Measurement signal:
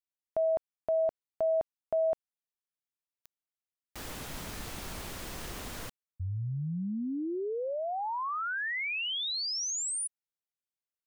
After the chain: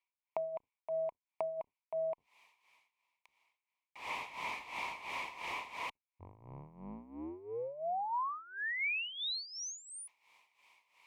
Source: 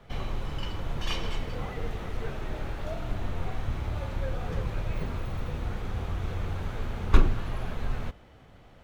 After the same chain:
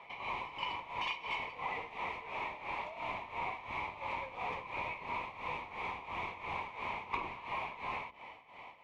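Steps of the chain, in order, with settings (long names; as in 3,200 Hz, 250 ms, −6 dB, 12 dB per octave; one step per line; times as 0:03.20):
sub-octave generator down 2 octaves, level +1 dB
reversed playback
upward compression, threshold −41 dBFS
reversed playback
amplitude tremolo 2.9 Hz, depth 79%
pair of resonant band-passes 1,500 Hz, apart 1.2 octaves
downward compressor 12 to 1, threshold −49 dBFS
level +15.5 dB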